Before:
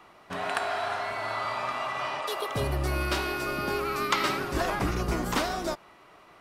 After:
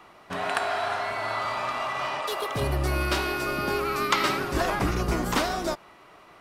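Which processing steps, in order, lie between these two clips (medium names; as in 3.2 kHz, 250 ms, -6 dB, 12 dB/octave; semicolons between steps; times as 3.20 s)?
1.41–2.62 s: hard clipper -26 dBFS, distortion -24 dB; trim +2.5 dB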